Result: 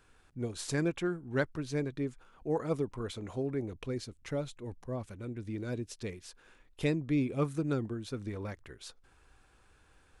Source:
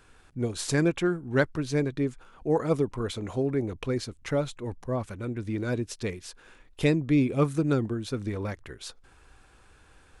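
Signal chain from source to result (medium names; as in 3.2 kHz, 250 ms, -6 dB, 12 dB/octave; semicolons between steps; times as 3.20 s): 3.68–6.11 s: dynamic bell 1.2 kHz, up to -4 dB, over -45 dBFS, Q 0.83; trim -7 dB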